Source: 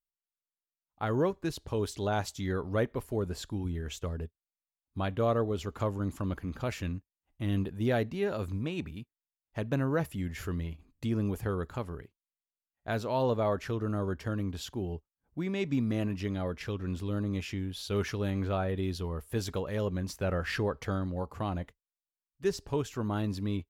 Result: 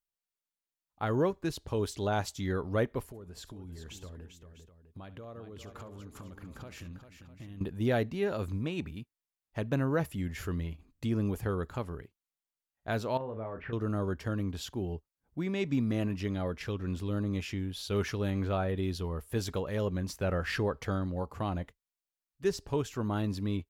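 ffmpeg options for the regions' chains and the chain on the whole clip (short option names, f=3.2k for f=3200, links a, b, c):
-filter_complex "[0:a]asettb=1/sr,asplit=3[a][b][c];[a]atrim=end=3.074[d];[b]atrim=start=3.07:end=7.61,asetpts=PTS-STARTPTS,afade=t=in:d=0.004:c=qsin,afade=t=out:st=4.536:d=0.004:c=qsin,acompressor=threshold=-42dB:ratio=16:attack=3.2:release=140:knee=1:detection=peak,aecho=1:1:69|396|652:0.15|0.376|0.2,atrim=end_sample=200214[e];[c]atrim=start=7.606[f];[d][e]acrossfade=d=0.004:c1=hsin:c2=qsin[g];[g][f]acrossfade=d=0.004:c1=qsin:c2=hsin,asettb=1/sr,asplit=3[h][i][j];[h]atrim=end=13.174[k];[i]atrim=start=13.17:end=13.73,asetpts=PTS-STARTPTS,afade=t=in:d=0.004:c=qsin,afade=t=out:st=0.556:d=0.004:c=qsin,lowpass=f=2.3k:w=0.5412,lowpass=f=2.3k:w=1.3066,acompressor=threshold=-35dB:ratio=12:attack=3.2:release=140:knee=1:detection=peak,asplit=2[l][m];[m]adelay=36,volume=-7.5dB[n];[l][n]amix=inputs=2:normalize=0,atrim=end_sample=24696[o];[j]atrim=start=13.726[p];[k][o]acrossfade=d=0.004:c1=hsin:c2=qsin[q];[q][p]acrossfade=d=0.004:c1=qsin:c2=hsin"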